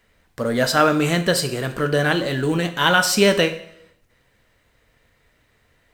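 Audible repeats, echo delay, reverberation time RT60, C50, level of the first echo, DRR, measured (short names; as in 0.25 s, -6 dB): none, none, 0.75 s, 12.5 dB, none, 8.5 dB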